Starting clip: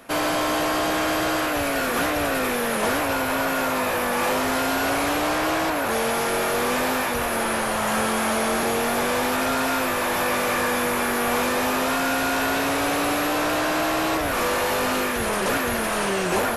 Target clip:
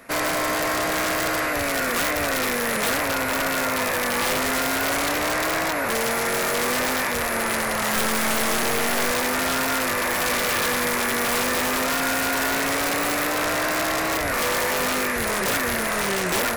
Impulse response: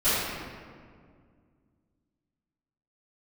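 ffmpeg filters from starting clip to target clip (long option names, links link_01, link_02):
-filter_complex "[0:a]equalizer=frequency=315:width_type=o:width=0.33:gain=-4,equalizer=frequency=800:width_type=o:width=0.33:gain=-4,equalizer=frequency=2000:width_type=o:width=0.33:gain=7,equalizer=frequency=3150:width_type=o:width=0.33:gain=-7,aeval=exprs='(mod(6.31*val(0)+1,2)-1)/6.31':channel_layout=same,asettb=1/sr,asplit=3[link_01][link_02][link_03];[link_01]atrim=end=7.964[link_04];[link_02]atrim=start=7.96:end=9.11,asetpts=PTS-STARTPTS,afade=type=in:duration=0.004:curve=qsin,afade=type=out:start_time=1.146:duration=0.004:curve=qsin,aeval=exprs='0.158*(cos(1*acos(clip(val(0)/0.158,-1,1)))-cos(1*PI/2))+0.0316*(cos(4*acos(clip(val(0)/0.158,-1,1)))-cos(4*PI/2))+0.02*(cos(6*acos(clip(val(0)/0.158,-1,1)))-cos(6*PI/2))+0.0251*(cos(8*acos(clip(val(0)/0.158,-1,1)))-cos(8*PI/2))':channel_layout=same[link_05];[link_03]atrim=start=9.106[link_06];[link_04][link_05]acrossfade=duration=0.004:curve1=hsin:curve2=qsin[link_07];[link_07][link_06]acrossfade=duration=0.004:curve1=qsin:curve2=hsin"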